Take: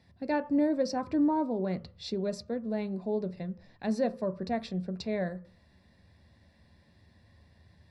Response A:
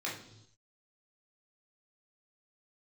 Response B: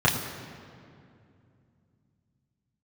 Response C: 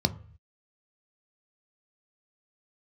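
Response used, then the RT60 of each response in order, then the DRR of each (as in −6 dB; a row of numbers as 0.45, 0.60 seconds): C; non-exponential decay, 2.5 s, 0.50 s; −5.0, −5.5, 9.0 decibels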